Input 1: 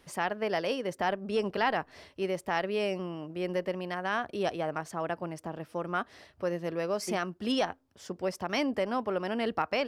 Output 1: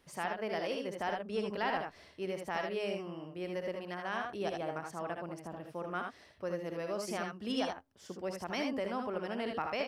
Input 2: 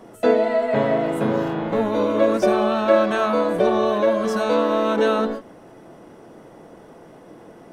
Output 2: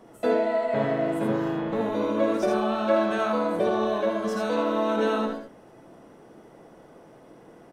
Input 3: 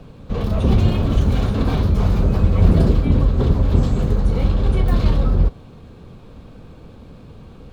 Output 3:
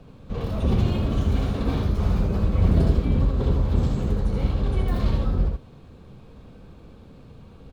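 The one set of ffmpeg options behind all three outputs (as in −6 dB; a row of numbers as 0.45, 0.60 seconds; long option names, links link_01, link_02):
-af "aecho=1:1:64|79:0.376|0.562,volume=-7dB"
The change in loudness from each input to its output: −5.5, −5.5, −5.5 LU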